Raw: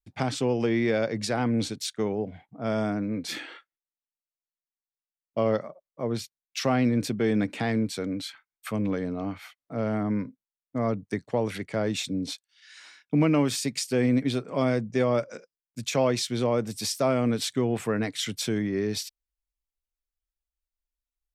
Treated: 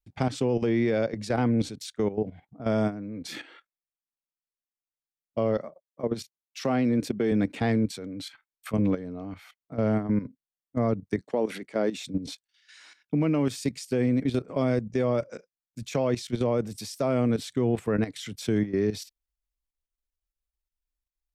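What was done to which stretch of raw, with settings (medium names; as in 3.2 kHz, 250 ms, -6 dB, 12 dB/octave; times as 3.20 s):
5.57–7.32 s: high-pass 150 Hz
11.21–11.97 s: high-pass 200 Hz 24 dB/octave
whole clip: dynamic bell 450 Hz, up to +3 dB, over -35 dBFS, Q 0.95; level held to a coarse grid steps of 13 dB; bass shelf 250 Hz +6 dB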